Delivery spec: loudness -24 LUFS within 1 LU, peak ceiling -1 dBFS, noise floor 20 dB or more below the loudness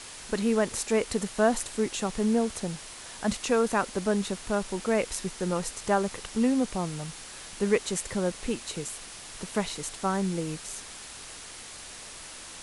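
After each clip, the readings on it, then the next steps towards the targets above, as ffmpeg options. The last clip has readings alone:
noise floor -44 dBFS; noise floor target -49 dBFS; loudness -29.0 LUFS; peak -10.0 dBFS; loudness target -24.0 LUFS
-> -af "afftdn=nr=6:nf=-44"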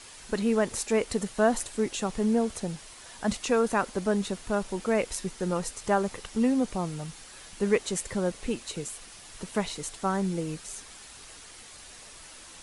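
noise floor -48 dBFS; noise floor target -49 dBFS
-> -af "afftdn=nr=6:nf=-48"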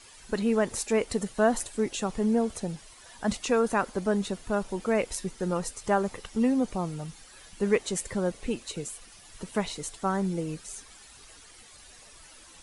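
noise floor -52 dBFS; loudness -29.0 LUFS; peak -10.0 dBFS; loudness target -24.0 LUFS
-> -af "volume=5dB"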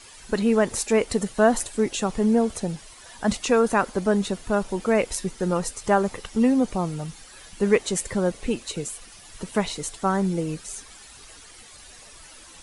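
loudness -24.0 LUFS; peak -5.0 dBFS; noise floor -47 dBFS

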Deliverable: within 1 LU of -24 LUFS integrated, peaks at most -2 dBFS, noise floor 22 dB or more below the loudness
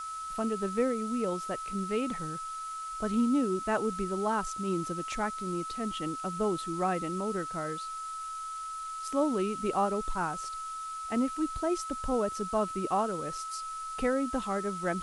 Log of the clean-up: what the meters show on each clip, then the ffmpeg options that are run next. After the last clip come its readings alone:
steady tone 1300 Hz; tone level -36 dBFS; noise floor -39 dBFS; noise floor target -54 dBFS; loudness -32.0 LUFS; peak -16.5 dBFS; loudness target -24.0 LUFS
-> -af "bandreject=f=1.3k:w=30"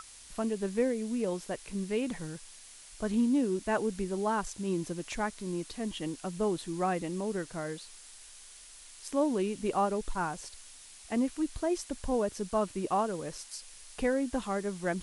steady tone none; noise floor -52 dBFS; noise floor target -55 dBFS
-> -af "afftdn=nr=6:nf=-52"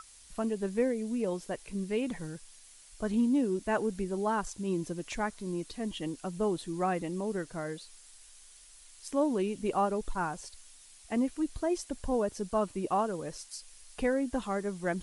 noise floor -55 dBFS; loudness -33.0 LUFS; peak -17.5 dBFS; loudness target -24.0 LUFS
-> -af "volume=9dB"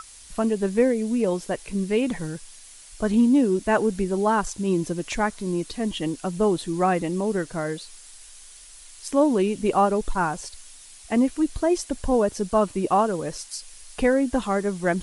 loudness -24.0 LUFS; peak -8.5 dBFS; noise floor -46 dBFS

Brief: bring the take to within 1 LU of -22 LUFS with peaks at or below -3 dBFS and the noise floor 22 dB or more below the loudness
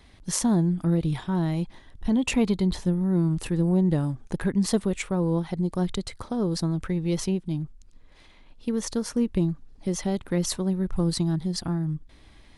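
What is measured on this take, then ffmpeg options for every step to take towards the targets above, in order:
loudness -26.5 LUFS; peak -10.5 dBFS; loudness target -22.0 LUFS
-> -af "volume=4.5dB"

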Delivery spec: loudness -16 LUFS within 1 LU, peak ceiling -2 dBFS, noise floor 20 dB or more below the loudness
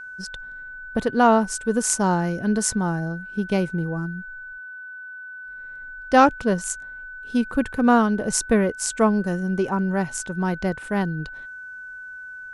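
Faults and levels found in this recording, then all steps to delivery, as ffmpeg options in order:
steady tone 1500 Hz; tone level -35 dBFS; loudness -22.5 LUFS; peak -3.5 dBFS; loudness target -16.0 LUFS
-> -af "bandreject=f=1.5k:w=30"
-af "volume=6.5dB,alimiter=limit=-2dB:level=0:latency=1"

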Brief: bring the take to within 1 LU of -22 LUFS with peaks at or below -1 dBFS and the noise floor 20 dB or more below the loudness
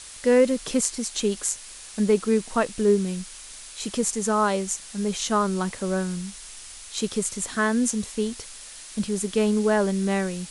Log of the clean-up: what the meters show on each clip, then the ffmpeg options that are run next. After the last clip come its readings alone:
noise floor -42 dBFS; noise floor target -45 dBFS; loudness -24.5 LUFS; peak -5.0 dBFS; loudness target -22.0 LUFS
-> -af "afftdn=nr=6:nf=-42"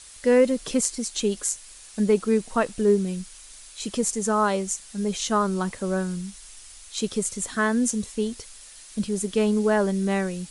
noise floor -46 dBFS; loudness -25.0 LUFS; peak -5.0 dBFS; loudness target -22.0 LUFS
-> -af "volume=3dB"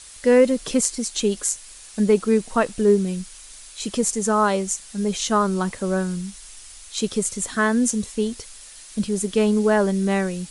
loudness -22.0 LUFS; peak -2.0 dBFS; noise floor -43 dBFS

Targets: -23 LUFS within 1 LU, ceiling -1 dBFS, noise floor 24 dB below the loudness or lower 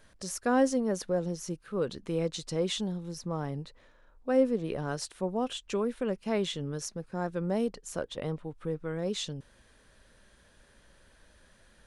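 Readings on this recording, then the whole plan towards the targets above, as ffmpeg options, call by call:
loudness -32.5 LUFS; peak -13.5 dBFS; loudness target -23.0 LUFS
-> -af "volume=9.5dB"

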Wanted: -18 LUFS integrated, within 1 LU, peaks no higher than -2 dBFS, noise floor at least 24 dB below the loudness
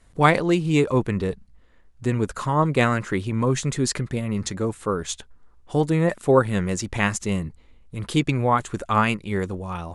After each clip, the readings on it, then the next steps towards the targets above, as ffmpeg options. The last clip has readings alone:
loudness -23.0 LUFS; peak -3.0 dBFS; loudness target -18.0 LUFS
-> -af "volume=5dB,alimiter=limit=-2dB:level=0:latency=1"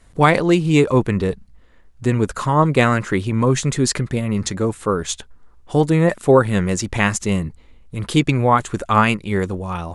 loudness -18.5 LUFS; peak -2.0 dBFS; noise floor -49 dBFS

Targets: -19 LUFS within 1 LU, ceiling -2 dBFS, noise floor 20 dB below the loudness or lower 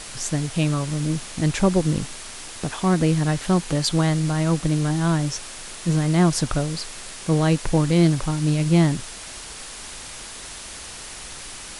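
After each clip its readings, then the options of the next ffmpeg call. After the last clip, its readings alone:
noise floor -37 dBFS; noise floor target -42 dBFS; loudness -22.0 LUFS; peak -6.5 dBFS; loudness target -19.0 LUFS
-> -af "afftdn=nr=6:nf=-37"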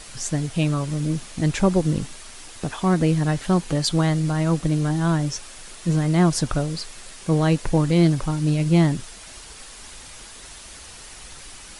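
noise floor -42 dBFS; loudness -22.0 LUFS; peak -6.5 dBFS; loudness target -19.0 LUFS
-> -af "volume=3dB"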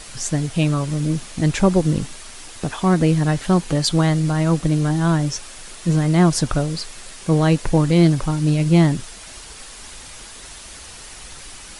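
loudness -19.0 LUFS; peak -3.5 dBFS; noise floor -39 dBFS

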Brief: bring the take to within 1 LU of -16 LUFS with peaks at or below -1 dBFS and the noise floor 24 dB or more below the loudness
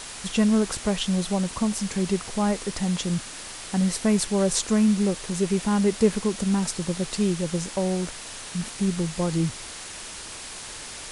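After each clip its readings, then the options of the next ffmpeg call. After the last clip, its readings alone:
noise floor -39 dBFS; noise floor target -49 dBFS; loudness -25.0 LUFS; peak -7.5 dBFS; loudness target -16.0 LUFS
-> -af "afftdn=nr=10:nf=-39"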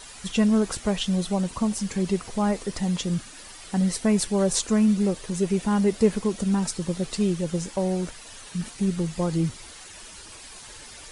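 noise floor -44 dBFS; noise floor target -49 dBFS
-> -af "afftdn=nr=6:nf=-44"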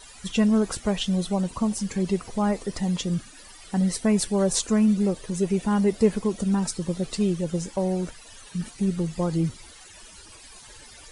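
noise floor -47 dBFS; noise floor target -49 dBFS
-> -af "afftdn=nr=6:nf=-47"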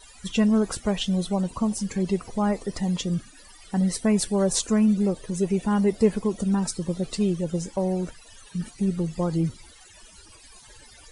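noise floor -50 dBFS; loudness -25.5 LUFS; peak -8.0 dBFS; loudness target -16.0 LUFS
-> -af "volume=9.5dB,alimiter=limit=-1dB:level=0:latency=1"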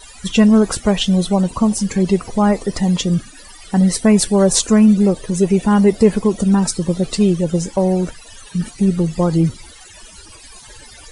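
loudness -16.0 LUFS; peak -1.0 dBFS; noise floor -41 dBFS

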